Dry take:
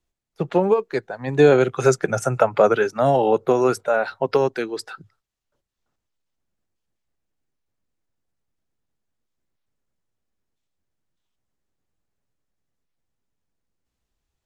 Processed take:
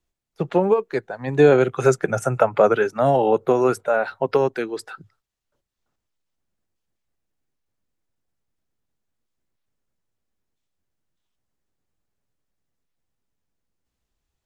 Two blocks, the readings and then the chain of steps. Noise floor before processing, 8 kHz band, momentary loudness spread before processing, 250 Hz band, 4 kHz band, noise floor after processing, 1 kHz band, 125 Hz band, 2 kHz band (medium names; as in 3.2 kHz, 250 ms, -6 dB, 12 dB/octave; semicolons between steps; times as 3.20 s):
-82 dBFS, -3.0 dB, 13 LU, 0.0 dB, -3.5 dB, -82 dBFS, 0.0 dB, 0.0 dB, -0.5 dB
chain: dynamic bell 5 kHz, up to -6 dB, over -46 dBFS, Q 1.3